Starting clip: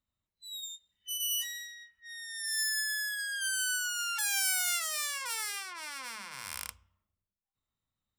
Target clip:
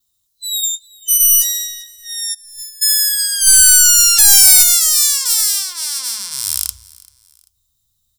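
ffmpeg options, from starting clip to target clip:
-filter_complex "[0:a]aexciter=amount=9.2:drive=5.5:freq=3500,asplit=2[s0][s1];[s1]alimiter=limit=0.562:level=0:latency=1,volume=0.891[s2];[s0][s2]amix=inputs=2:normalize=0,asoftclip=type=tanh:threshold=0.794,adynamicequalizer=threshold=0.0501:dfrequency=9400:dqfactor=4.3:tfrequency=9400:tqfactor=4.3:attack=5:release=100:ratio=0.375:range=2:mode=cutabove:tftype=bell,asplit=2[s3][s4];[s4]aecho=0:1:390|780:0.0668|0.0247[s5];[s3][s5]amix=inputs=2:normalize=0,asplit=3[s6][s7][s8];[s6]afade=t=out:st=2.33:d=0.02[s9];[s7]agate=range=0.0447:threshold=0.562:ratio=16:detection=peak,afade=t=in:st=2.33:d=0.02,afade=t=out:st=2.81:d=0.02[s10];[s8]afade=t=in:st=2.81:d=0.02[s11];[s9][s10][s11]amix=inputs=3:normalize=0,asplit=3[s12][s13][s14];[s12]afade=t=out:st=3.46:d=0.02[s15];[s13]acontrast=68,afade=t=in:st=3.46:d=0.02,afade=t=out:st=4.62:d=0.02[s16];[s14]afade=t=in:st=4.62:d=0.02[s17];[s15][s16][s17]amix=inputs=3:normalize=0,asubboost=boost=7.5:cutoff=130,volume=0.891"

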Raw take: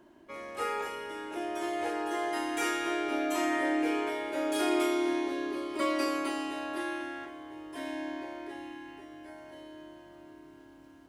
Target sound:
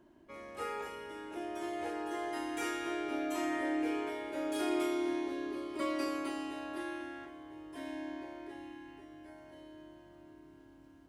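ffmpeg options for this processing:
-af "lowshelf=f=230:g=8.5,volume=0.447"

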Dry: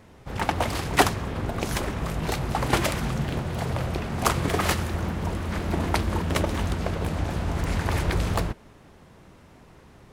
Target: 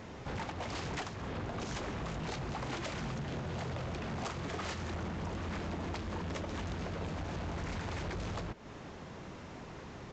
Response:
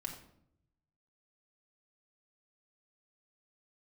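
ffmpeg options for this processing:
-af "lowshelf=f=61:g=-9,acompressor=threshold=0.0126:ratio=6,aresample=16000,asoftclip=type=tanh:threshold=0.0112,aresample=44100,volume=1.88"

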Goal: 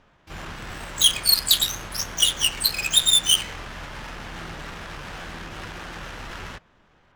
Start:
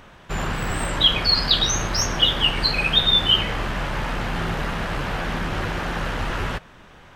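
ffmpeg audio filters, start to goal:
-filter_complex "[0:a]adynamicsmooth=sensitivity=1.5:basefreq=1400,crystalizer=i=7.5:c=0,asplit=2[s0][s1];[s1]asetrate=88200,aresample=44100,atempo=0.5,volume=0.398[s2];[s0][s2]amix=inputs=2:normalize=0,volume=0.224"

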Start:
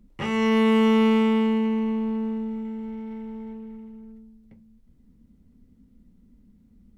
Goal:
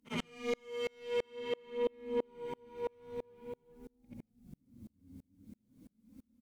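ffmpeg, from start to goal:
-filter_complex "[0:a]afftfilt=real='re':imag='-im':win_size=8192:overlap=0.75,acrossover=split=210[s0][s1];[s0]dynaudnorm=f=480:g=7:m=3.35[s2];[s1]adynamicequalizer=threshold=0.00355:dfrequency=2300:dqfactor=1:tfrequency=2300:tqfactor=1:attack=5:release=100:ratio=0.375:range=3.5:mode=boostabove:tftype=bell[s3];[s2][s3]amix=inputs=2:normalize=0,alimiter=level_in=1.33:limit=0.0631:level=0:latency=1:release=316,volume=0.75,asetrate=48000,aresample=44100,highpass=100,highshelf=f=4400:g=11.5,asplit=4[s4][s5][s6][s7];[s5]adelay=433,afreqshift=-80,volume=0.0668[s8];[s6]adelay=866,afreqshift=-160,volume=0.0309[s9];[s7]adelay=1299,afreqshift=-240,volume=0.0141[s10];[s4][s8][s9][s10]amix=inputs=4:normalize=0,aeval=exprs='0.0668*sin(PI/2*1.78*val(0)/0.0668)':c=same,acrossover=split=470[s11][s12];[s12]acompressor=threshold=0.0141:ratio=6[s13];[s11][s13]amix=inputs=2:normalize=0,flanger=delay=3.6:depth=7.5:regen=21:speed=0.47:shape=sinusoidal,aeval=exprs='val(0)*pow(10,-35*if(lt(mod(-3*n/s,1),2*abs(-3)/1000),1-mod(-3*n/s,1)/(2*abs(-3)/1000),(mod(-3*n/s,1)-2*abs(-3)/1000)/(1-2*abs(-3)/1000))/20)':c=same,volume=1.78"

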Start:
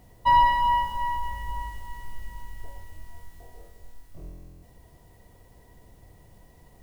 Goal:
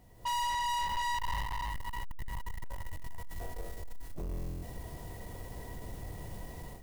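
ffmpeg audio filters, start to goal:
-filter_complex "[0:a]dynaudnorm=f=140:g=3:m=6.68,aeval=exprs='(tanh(20*val(0)+0.2)-tanh(0.2))/20':c=same,asettb=1/sr,asplit=3[s0][s1][s2];[s0]atrim=end=1.414[s3];[s1]atrim=start=1.41:end=4.29,asetpts=PTS-STARTPTS,afade=t=in:d=0.004:c=qsin,afade=t=out:st=2.876:d=0.004:c=qsin,acompressor=threshold=0.0398:ratio=6[s4];[s2]atrim=start=4.286[s5];[s3][s4]acrossfade=d=0.004:c1=hsin:c2=qsin[s6];[s6][s5]acrossfade=d=0.004:c1=qsin:c2=hsin,volume=0.531"

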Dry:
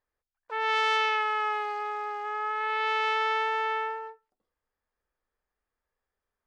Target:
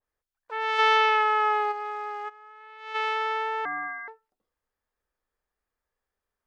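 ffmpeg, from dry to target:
-filter_complex "[0:a]asplit=3[s0][s1][s2];[s0]afade=t=out:st=0.78:d=0.02[s3];[s1]acontrast=77,afade=t=in:st=0.78:d=0.02,afade=t=out:st=1.71:d=0.02[s4];[s2]afade=t=in:st=1.71:d=0.02[s5];[s3][s4][s5]amix=inputs=3:normalize=0,asplit=3[s6][s7][s8];[s6]afade=t=out:st=2.28:d=0.02[s9];[s7]agate=range=0.126:threshold=0.0631:ratio=16:detection=peak,afade=t=in:st=2.28:d=0.02,afade=t=out:st=2.94:d=0.02[s10];[s8]afade=t=in:st=2.94:d=0.02[s11];[s9][s10][s11]amix=inputs=3:normalize=0,asettb=1/sr,asplit=3[s12][s13][s14];[s12]atrim=end=3.654[s15];[s13]atrim=start=3.65:end=4.08,asetpts=PTS-STARTPTS,afade=t=in:d=0.004:c=qsin,afade=t=out:st=0.426:d=0.004:c=qsin,lowpass=f=2100:t=q:w=0.5098,lowpass=f=2100:t=q:w=0.6013,lowpass=f=2100:t=q:w=0.9,lowpass=f=2100:t=q:w=2.563,afreqshift=-2500[s16];[s14]atrim=start=4.076[s17];[s15][s16]acrossfade=d=0.004:c1=hsin:c2=qsin[s18];[s18][s17]acrossfade=d=0.004:c1=qsin:c2=hsin,adynamicequalizer=threshold=0.0251:dfrequency=1600:dqfactor=0.7:tfrequency=1600:tqfactor=0.7:attack=5:release=100:ratio=0.375:range=3.5:mode=cutabove:tftype=highshelf"

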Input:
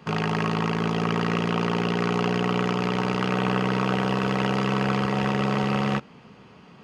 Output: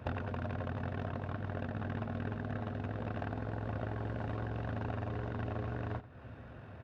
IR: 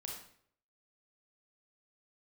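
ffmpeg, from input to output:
-af "acompressor=threshold=0.0178:ratio=6,asetrate=24750,aresample=44100,atempo=1.7818,aecho=1:1:91:0.133"

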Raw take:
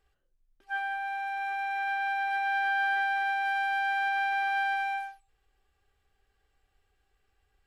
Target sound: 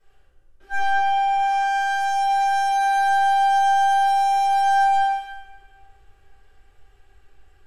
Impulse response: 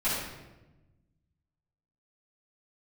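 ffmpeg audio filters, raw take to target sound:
-filter_complex "[0:a]aeval=exprs='(tanh(70.8*val(0)+0.2)-tanh(0.2))/70.8':c=same[s0];[1:a]atrim=start_sample=2205,asetrate=26019,aresample=44100[s1];[s0][s1]afir=irnorm=-1:irlink=0"

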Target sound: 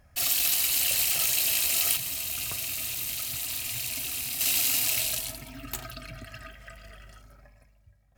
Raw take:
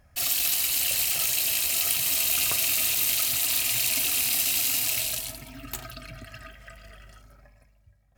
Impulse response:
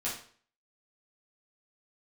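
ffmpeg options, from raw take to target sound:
-filter_complex "[0:a]asettb=1/sr,asplit=3[s0][s1][s2];[s0]atrim=end=1.964[s3];[s1]atrim=start=1.96:end=4.41,asetpts=PTS-STARTPTS,afade=t=in:d=0.004:c=qsin,afade=t=out:st=2.446:d=0.004:c=qsin,acrossover=split=200[s4][s5];[s5]acompressor=threshold=0.0158:ratio=2[s6];[s4][s6]amix=inputs=2:normalize=0[s7];[s2]atrim=start=4.406[s8];[s3][s7]acrossfade=d=0.004:c1=hsin:c2=qsin[s9];[s9][s8]acrossfade=d=0.004:c1=qsin:c2=hsin"

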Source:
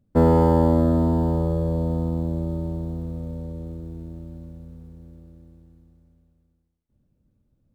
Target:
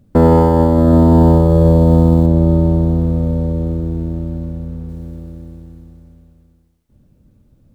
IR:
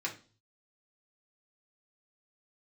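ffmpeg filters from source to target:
-filter_complex "[0:a]asettb=1/sr,asplit=3[s0][s1][s2];[s0]atrim=end=2.264[s3];[s1]atrim=start=2.26:end=4.89,asetpts=PTS-STARTPTS,afade=t=in:d=0.004:c=qsin,afade=t=out:st=2.626:d=0.004:c=qsin,highshelf=f=4100:g=-8[s4];[s2]atrim=start=4.886[s5];[s3][s4]acrossfade=d=0.004:c1=hsin:c2=qsin[s6];[s6][s5]acrossfade=d=0.004:c1=qsin:c2=hsin,alimiter=level_in=6.68:limit=0.891:release=50:level=0:latency=1,volume=0.891"

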